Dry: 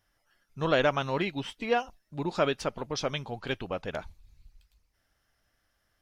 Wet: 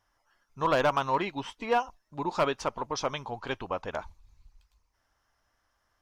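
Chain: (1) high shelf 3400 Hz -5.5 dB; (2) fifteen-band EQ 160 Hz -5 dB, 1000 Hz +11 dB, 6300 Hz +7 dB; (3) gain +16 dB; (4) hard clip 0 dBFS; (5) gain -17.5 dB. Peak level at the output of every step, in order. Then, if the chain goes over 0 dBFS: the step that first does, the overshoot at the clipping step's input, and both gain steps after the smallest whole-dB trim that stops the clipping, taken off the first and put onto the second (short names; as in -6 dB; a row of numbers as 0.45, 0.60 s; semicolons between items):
-13.0, -8.0, +8.0, 0.0, -17.5 dBFS; step 3, 8.0 dB; step 3 +8 dB, step 5 -9.5 dB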